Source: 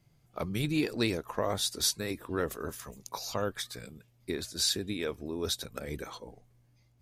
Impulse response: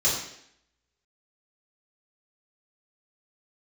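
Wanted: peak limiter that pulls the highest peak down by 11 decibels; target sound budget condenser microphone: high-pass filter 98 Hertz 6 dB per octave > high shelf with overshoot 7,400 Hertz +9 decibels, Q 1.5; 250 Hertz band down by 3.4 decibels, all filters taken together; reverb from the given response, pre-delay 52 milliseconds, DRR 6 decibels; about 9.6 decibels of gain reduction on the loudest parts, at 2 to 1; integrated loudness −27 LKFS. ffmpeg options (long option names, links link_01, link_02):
-filter_complex "[0:a]equalizer=frequency=250:width_type=o:gain=-4,acompressor=threshold=-43dB:ratio=2,alimiter=level_in=10dB:limit=-24dB:level=0:latency=1,volume=-10dB,asplit=2[link_01][link_02];[1:a]atrim=start_sample=2205,adelay=52[link_03];[link_02][link_03]afir=irnorm=-1:irlink=0,volume=-18dB[link_04];[link_01][link_04]amix=inputs=2:normalize=0,highpass=frequency=98:poles=1,highshelf=frequency=7400:width_type=q:width=1.5:gain=9,volume=15.5dB"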